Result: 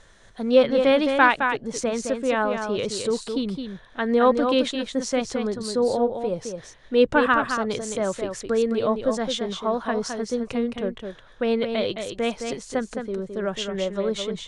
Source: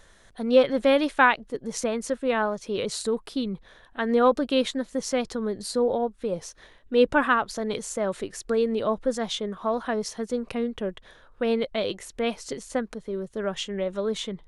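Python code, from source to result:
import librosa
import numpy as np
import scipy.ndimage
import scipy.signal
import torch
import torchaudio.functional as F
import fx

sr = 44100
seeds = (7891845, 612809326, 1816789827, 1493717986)

p1 = scipy.signal.sosfilt(scipy.signal.butter(4, 9000.0, 'lowpass', fs=sr, output='sos'), x)
p2 = fx.peak_eq(p1, sr, hz=120.0, db=8.0, octaves=0.24)
p3 = p2 + fx.echo_single(p2, sr, ms=215, db=-6.5, dry=0)
y = F.gain(torch.from_numpy(p3), 1.5).numpy()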